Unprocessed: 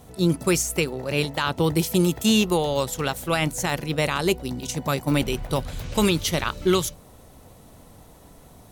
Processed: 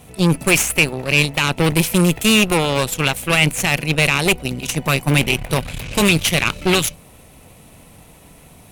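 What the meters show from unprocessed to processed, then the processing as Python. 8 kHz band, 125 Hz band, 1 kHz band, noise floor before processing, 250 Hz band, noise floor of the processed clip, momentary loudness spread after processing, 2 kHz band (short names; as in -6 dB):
+7.5 dB, +7.0 dB, +4.5 dB, -49 dBFS, +4.0 dB, -46 dBFS, 6 LU, +12.0 dB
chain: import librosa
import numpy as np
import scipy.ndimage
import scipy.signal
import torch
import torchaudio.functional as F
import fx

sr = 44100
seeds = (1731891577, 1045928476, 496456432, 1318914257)

y = fx.cheby_harmonics(x, sr, harmonics=(6,), levels_db=(-13,), full_scale_db=-8.5)
y = fx.graphic_eq_15(y, sr, hz=(160, 2500, 10000), db=(4, 12, 7))
y = 10.0 ** (-4.0 / 20.0) * np.tanh(y / 10.0 ** (-4.0 / 20.0))
y = F.gain(torch.from_numpy(y), 2.0).numpy()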